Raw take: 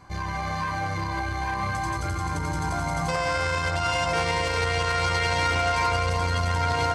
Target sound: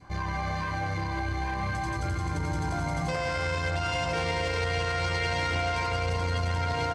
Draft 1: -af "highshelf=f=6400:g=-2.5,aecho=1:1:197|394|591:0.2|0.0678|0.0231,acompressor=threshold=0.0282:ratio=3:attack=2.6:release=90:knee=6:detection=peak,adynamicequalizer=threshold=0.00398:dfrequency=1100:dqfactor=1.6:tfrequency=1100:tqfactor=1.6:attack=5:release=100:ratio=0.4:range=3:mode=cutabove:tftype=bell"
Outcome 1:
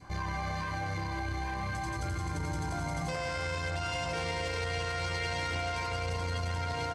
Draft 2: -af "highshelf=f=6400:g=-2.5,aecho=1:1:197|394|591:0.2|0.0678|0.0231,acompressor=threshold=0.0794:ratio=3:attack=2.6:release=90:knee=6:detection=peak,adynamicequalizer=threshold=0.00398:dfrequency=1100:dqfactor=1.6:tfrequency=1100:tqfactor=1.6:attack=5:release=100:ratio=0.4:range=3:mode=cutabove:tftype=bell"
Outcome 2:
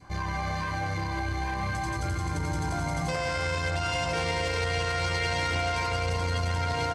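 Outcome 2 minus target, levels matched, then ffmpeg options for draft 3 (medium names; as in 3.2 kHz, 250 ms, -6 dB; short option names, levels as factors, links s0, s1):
8 kHz band +3.5 dB
-af "highshelf=f=6400:g=-9.5,aecho=1:1:197|394|591:0.2|0.0678|0.0231,acompressor=threshold=0.0794:ratio=3:attack=2.6:release=90:knee=6:detection=peak,adynamicequalizer=threshold=0.00398:dfrequency=1100:dqfactor=1.6:tfrequency=1100:tqfactor=1.6:attack=5:release=100:ratio=0.4:range=3:mode=cutabove:tftype=bell"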